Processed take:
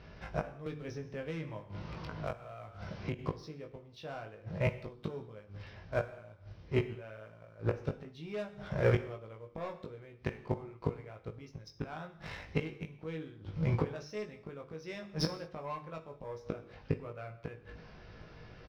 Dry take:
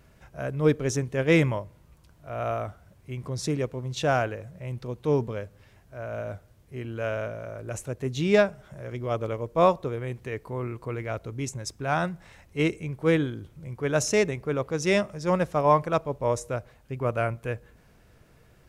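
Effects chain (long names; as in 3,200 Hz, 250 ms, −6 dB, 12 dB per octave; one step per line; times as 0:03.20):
Butterworth low-pass 5,600 Hz 72 dB per octave
mains-hum notches 50/100/150/200/250/300/350/400 Hz
leveller curve on the samples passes 1
soft clipping −12 dBFS, distortion −19 dB
gate with flip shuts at −24 dBFS, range −29 dB
double-tracking delay 19 ms −4 dB
reverb whose tail is shaped and stops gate 240 ms falling, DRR 9 dB
0:00.66–0:03.19: multiband upward and downward compressor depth 100%
level +6 dB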